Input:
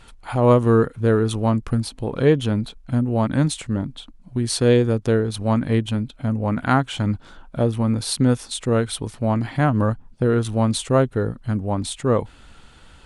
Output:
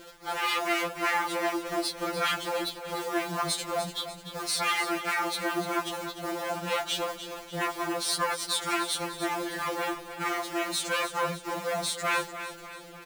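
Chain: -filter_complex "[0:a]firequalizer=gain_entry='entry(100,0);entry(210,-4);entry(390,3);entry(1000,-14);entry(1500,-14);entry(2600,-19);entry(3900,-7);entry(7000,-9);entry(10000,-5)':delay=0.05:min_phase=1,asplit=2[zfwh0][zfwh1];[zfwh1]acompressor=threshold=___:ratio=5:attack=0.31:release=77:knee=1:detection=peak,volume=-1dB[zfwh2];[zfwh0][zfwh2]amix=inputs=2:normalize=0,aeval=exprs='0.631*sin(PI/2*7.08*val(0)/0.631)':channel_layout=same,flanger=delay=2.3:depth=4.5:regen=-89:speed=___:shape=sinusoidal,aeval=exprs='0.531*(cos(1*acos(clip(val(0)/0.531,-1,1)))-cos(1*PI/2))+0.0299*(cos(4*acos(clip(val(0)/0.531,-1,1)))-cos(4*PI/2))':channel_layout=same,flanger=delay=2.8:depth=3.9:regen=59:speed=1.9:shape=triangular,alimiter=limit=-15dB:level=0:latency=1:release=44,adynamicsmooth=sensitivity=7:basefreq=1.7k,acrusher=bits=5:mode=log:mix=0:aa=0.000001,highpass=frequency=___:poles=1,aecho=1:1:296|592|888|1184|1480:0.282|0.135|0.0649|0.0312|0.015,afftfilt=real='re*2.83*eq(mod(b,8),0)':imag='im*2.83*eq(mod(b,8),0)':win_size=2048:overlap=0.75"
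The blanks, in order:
-28dB, 0.7, 860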